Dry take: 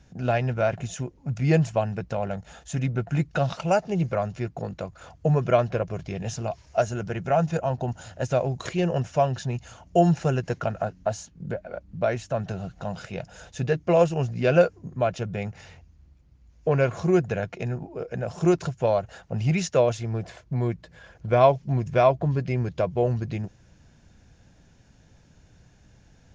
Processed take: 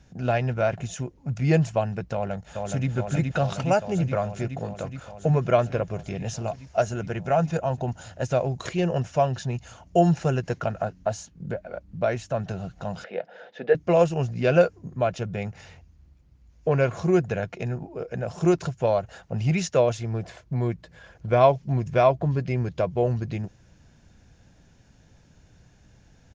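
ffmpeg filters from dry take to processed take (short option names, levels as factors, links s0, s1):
-filter_complex "[0:a]asplit=2[s0][s1];[s1]afade=t=in:st=2.13:d=0.01,afade=t=out:st=2.89:d=0.01,aecho=0:1:420|840|1260|1680|2100|2520|2940|3360|3780|4200|4620|5040:0.668344|0.534675|0.42774|0.342192|0.273754|0.219003|0.175202|0.140162|0.11213|0.0897036|0.0717629|0.0574103[s2];[s0][s2]amix=inputs=2:normalize=0,asettb=1/sr,asplit=3[s3][s4][s5];[s3]atrim=end=13.044[s6];[s4]atrim=start=13.04:end=13.75,asetpts=PTS-STARTPTS,afade=t=in:d=0.004:c=qsin,afade=t=out:st=0.706:d=0.004:c=qsin,highpass=f=240:w=0.5412,highpass=f=240:w=1.3066,equalizer=f=290:t=q:w=4:g=-4,equalizer=f=500:t=q:w=4:g=8,equalizer=f=730:t=q:w=4:g=3,equalizer=f=1100:t=q:w=4:g=-5,equalizer=f=1800:t=q:w=4:g=4,equalizer=f=2600:t=q:w=4:g=-5,lowpass=f=3400:w=0.5412,lowpass=f=3400:w=1.3066[s7];[s5]atrim=start=13.746[s8];[s6][s7]acrossfade=d=0.004:c1=hsin:c2=qsin[s9];[s9][s8]acrossfade=d=0.004:c1=qsin:c2=hsin"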